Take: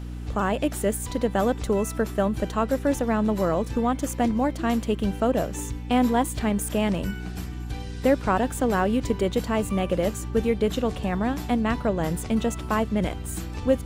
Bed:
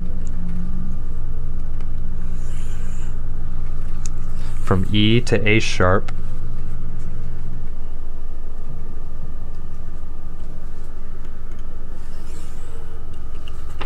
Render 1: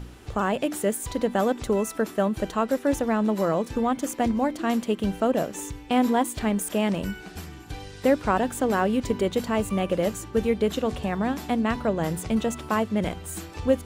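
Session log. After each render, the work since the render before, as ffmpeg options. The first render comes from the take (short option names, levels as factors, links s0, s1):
-af "bandreject=f=60:t=h:w=4,bandreject=f=120:t=h:w=4,bandreject=f=180:t=h:w=4,bandreject=f=240:t=h:w=4,bandreject=f=300:t=h:w=4"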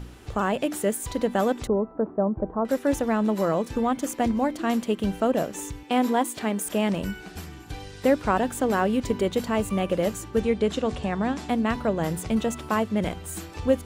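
-filter_complex "[0:a]asettb=1/sr,asplit=3[s0][s1][s2];[s0]atrim=end=1.674[s3];[s1]atrim=start=1.67:end=2.65,asetpts=PTS-STARTPTS,afade=t=in:d=0.004:c=qsin,afade=t=out:st=0.976:d=0.004:c=qsin,lowpass=f=1000:w=0.5412,lowpass=f=1000:w=1.3066[s4];[s2]atrim=start=2.646[s5];[s3][s4]acrossfade=d=0.004:c1=hsin:c2=qsin[s6];[s6][s5]acrossfade=d=0.004:c1=qsin:c2=hsin,asettb=1/sr,asplit=3[s7][s8][s9];[s7]atrim=end=5.834[s10];[s8]atrim=start=5.83:end=6.66,asetpts=PTS-STARTPTS,afade=t=in:d=0.004:c=qsin,afade=t=out:st=0.826:d=0.004:c=qsin,highpass=210[s11];[s9]atrim=start=6.656[s12];[s10][s11]acrossfade=d=0.004:c1=hsin:c2=qsin[s13];[s13][s12]acrossfade=d=0.004:c1=qsin:c2=hsin,asettb=1/sr,asplit=3[s14][s15][s16];[s14]atrim=end=10.404[s17];[s15]atrim=start=10.4:end=11.49,asetpts=PTS-STARTPTS,afade=t=in:d=0.004:c=qsin,afade=t=out:st=1.086:d=0.004:c=qsin,lowpass=f=9300:w=0.5412,lowpass=f=9300:w=1.3066[s18];[s16]atrim=start=11.486[s19];[s17][s18]acrossfade=d=0.004:c1=hsin:c2=qsin[s20];[s20][s19]acrossfade=d=0.004:c1=qsin:c2=hsin"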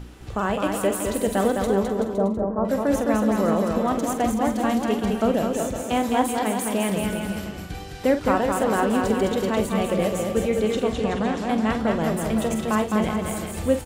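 -filter_complex "[0:a]asplit=2[s0][s1];[s1]adelay=46,volume=0.316[s2];[s0][s2]amix=inputs=2:normalize=0,asplit=2[s3][s4];[s4]aecho=0:1:210|378|512.4|619.9|705.9:0.631|0.398|0.251|0.158|0.1[s5];[s3][s5]amix=inputs=2:normalize=0"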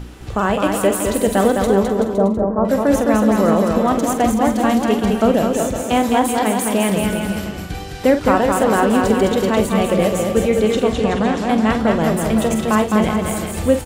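-af "volume=2.11,alimiter=limit=0.708:level=0:latency=1"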